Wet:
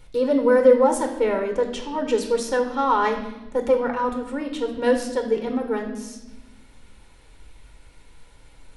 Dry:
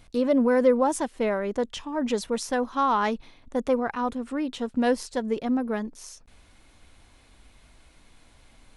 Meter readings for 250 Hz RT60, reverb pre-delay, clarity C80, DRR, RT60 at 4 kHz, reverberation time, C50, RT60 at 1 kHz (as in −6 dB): 1.6 s, 4 ms, 10.5 dB, 4.0 dB, 0.95 s, 1.1 s, 8.0 dB, 0.90 s